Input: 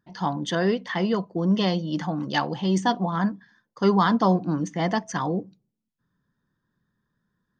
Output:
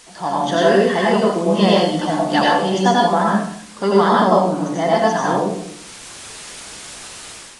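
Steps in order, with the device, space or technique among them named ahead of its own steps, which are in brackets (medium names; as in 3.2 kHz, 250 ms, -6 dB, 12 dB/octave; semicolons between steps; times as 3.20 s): filmed off a television (band-pass 220–7600 Hz; peaking EQ 670 Hz +7.5 dB 0.55 oct; reverberation RT60 0.60 s, pre-delay 81 ms, DRR -4.5 dB; white noise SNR 22 dB; level rider gain up to 10 dB; trim -1 dB; AAC 32 kbps 22.05 kHz)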